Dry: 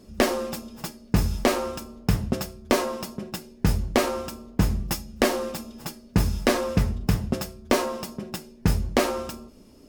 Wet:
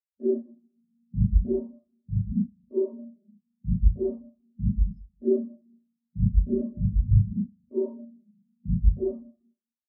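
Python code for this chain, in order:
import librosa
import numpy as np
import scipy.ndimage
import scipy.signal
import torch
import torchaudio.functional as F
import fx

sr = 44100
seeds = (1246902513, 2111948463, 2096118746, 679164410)

y = fx.room_early_taps(x, sr, ms=(39, 76), db=(-3.5, -12.0))
y = fx.rev_schroeder(y, sr, rt60_s=1.5, comb_ms=30, drr_db=-4.5)
y = fx.spectral_expand(y, sr, expansion=4.0)
y = F.gain(torch.from_numpy(y), -5.0).numpy()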